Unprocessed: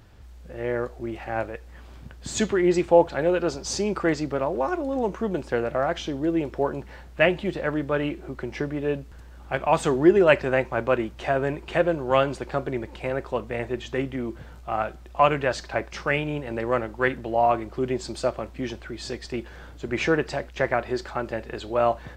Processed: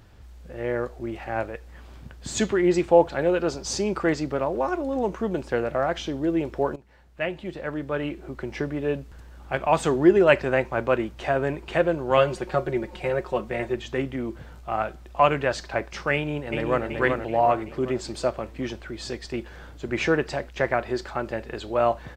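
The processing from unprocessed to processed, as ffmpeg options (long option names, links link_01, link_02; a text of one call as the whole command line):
ffmpeg -i in.wav -filter_complex "[0:a]asettb=1/sr,asplit=3[link_01][link_02][link_03];[link_01]atrim=end=12.174[link_04];[link_02]atrim=start=12.17:end=13.74,asetpts=PTS-STARTPTS,afade=type=in:duration=0.004:curve=qsin,afade=type=out:start_time=1.566:duration=0.004:curve=qsin,aecho=1:1:5.5:0.65,atrim=end_sample=69237[link_05];[link_03]atrim=start=13.736[link_06];[link_04][link_05]acrossfade=duration=0.004:curve1=hsin:curve2=qsin[link_07];[link_07][link_06]acrossfade=duration=0.004:curve1=qsin:curve2=hsin,asplit=2[link_08][link_09];[link_09]afade=type=in:start_time=16.14:duration=0.01,afade=type=out:start_time=16.86:duration=0.01,aecho=0:1:380|760|1140|1520|1900|2280:0.630957|0.315479|0.157739|0.0788697|0.0394348|0.0197174[link_10];[link_08][link_10]amix=inputs=2:normalize=0,asplit=2[link_11][link_12];[link_11]atrim=end=6.76,asetpts=PTS-STARTPTS,afade=type=out:start_time=6.756:duration=0.004:curve=hsin:silence=0.133352[link_13];[link_12]atrim=start=6.76,asetpts=PTS-STARTPTS,afade=type=in:duration=1.79:silence=0.133352[link_14];[link_13][link_14]concat=n=2:v=0:a=1" out.wav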